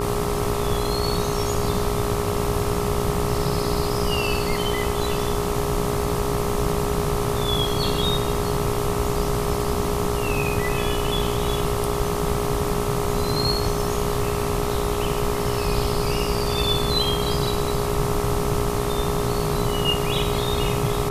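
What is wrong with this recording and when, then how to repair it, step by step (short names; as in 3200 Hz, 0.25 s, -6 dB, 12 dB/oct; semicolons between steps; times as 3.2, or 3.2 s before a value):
buzz 60 Hz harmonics 22 -28 dBFS
tone 410 Hz -26 dBFS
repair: de-hum 60 Hz, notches 22; notch 410 Hz, Q 30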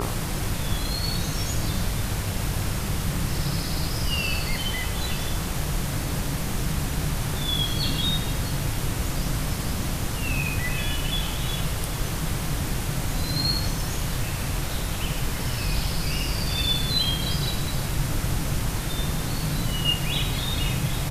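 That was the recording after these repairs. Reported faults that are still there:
none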